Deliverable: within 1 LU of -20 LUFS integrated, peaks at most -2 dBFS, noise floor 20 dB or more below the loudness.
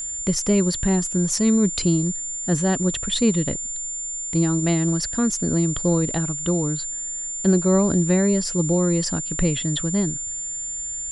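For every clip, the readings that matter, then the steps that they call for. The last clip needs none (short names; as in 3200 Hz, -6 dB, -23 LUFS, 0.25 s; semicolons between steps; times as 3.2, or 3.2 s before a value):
ticks 52/s; steady tone 7200 Hz; tone level -27 dBFS; loudness -21.5 LUFS; peak -6.5 dBFS; loudness target -20.0 LUFS
-> de-click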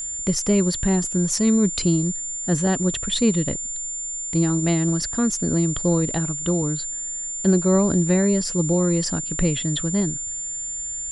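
ticks 0.18/s; steady tone 7200 Hz; tone level -27 dBFS
-> notch 7200 Hz, Q 30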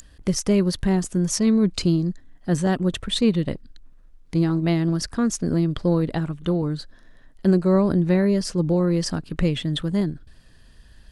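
steady tone none; loudness -22.5 LUFS; peak -7.5 dBFS; loudness target -20.0 LUFS
-> gain +2.5 dB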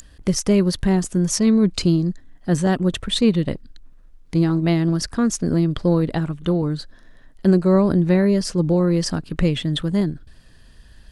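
loudness -20.0 LUFS; peak -5.0 dBFS; noise floor -48 dBFS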